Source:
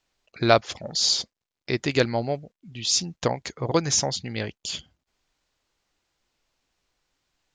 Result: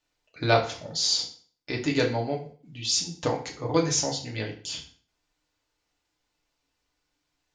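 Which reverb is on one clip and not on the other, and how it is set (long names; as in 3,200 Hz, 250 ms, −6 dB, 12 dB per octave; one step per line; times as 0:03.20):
feedback delay network reverb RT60 0.45 s, low-frequency decay 1×, high-frequency decay 0.9×, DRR −1 dB
level −6 dB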